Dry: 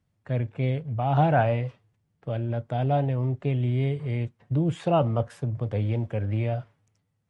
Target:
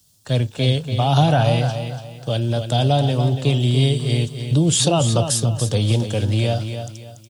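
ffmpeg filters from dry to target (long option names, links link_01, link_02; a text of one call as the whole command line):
ffmpeg -i in.wav -filter_complex "[0:a]acrossover=split=210[link_01][link_02];[link_02]acompressor=threshold=-24dB:ratio=6[link_03];[link_01][link_03]amix=inputs=2:normalize=0,aexciter=amount=8:drive=9:freq=3300,asplit=2[link_04][link_05];[link_05]aecho=0:1:287|574|861|1148:0.376|0.117|0.0361|0.0112[link_06];[link_04][link_06]amix=inputs=2:normalize=0,volume=7.5dB" out.wav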